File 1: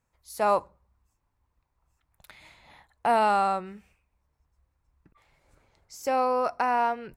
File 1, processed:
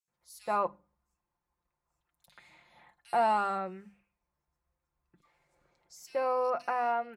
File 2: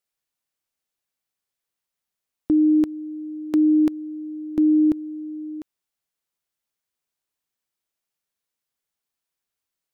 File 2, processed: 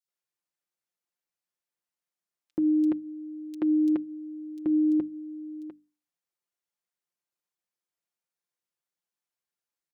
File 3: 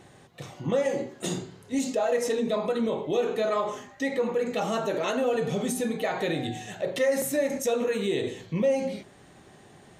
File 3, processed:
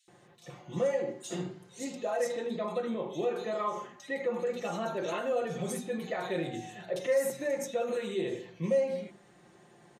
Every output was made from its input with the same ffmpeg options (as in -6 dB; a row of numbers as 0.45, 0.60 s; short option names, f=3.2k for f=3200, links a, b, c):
-filter_complex "[0:a]highpass=f=110:p=1,highshelf=f=9.4k:g=-6.5,bandreject=f=50:t=h:w=6,bandreject=f=100:t=h:w=6,bandreject=f=150:t=h:w=6,bandreject=f=200:t=h:w=6,bandreject=f=250:t=h:w=6,bandreject=f=300:t=h:w=6,aecho=1:1:5.7:0.54,acrossover=split=3300[a][b];[a]adelay=80[c];[c][b]amix=inputs=2:normalize=0,volume=-6dB"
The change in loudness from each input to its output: -5.0, -6.5, -5.5 LU